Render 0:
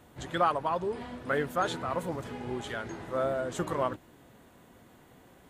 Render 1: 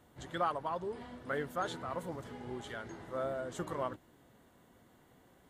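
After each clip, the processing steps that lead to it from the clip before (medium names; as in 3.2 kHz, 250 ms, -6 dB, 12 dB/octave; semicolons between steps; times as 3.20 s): band-stop 2.5 kHz, Q 13; trim -7 dB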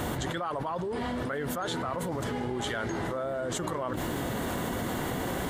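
level flattener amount 100%; trim -3 dB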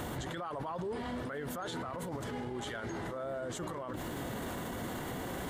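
peak limiter -31 dBFS, peak gain reduction 11 dB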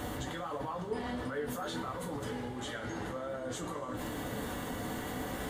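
reverberation, pre-delay 3 ms, DRR -1 dB; trim -2.5 dB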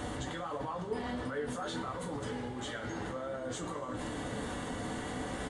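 resampled via 22.05 kHz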